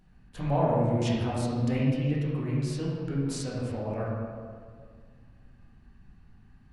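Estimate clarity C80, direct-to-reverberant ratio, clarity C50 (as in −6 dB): 0.0 dB, −7.5 dB, −2.0 dB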